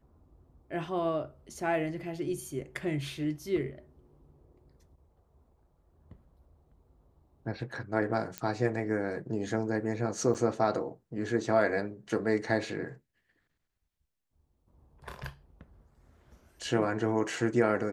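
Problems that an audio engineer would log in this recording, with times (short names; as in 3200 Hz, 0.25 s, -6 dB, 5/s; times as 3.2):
8.38 pop -18 dBFS
10.34–10.35 gap 7.7 ms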